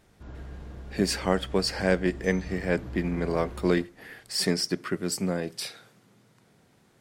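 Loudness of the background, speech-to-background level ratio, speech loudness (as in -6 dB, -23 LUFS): -42.0 LUFS, 14.0 dB, -28.0 LUFS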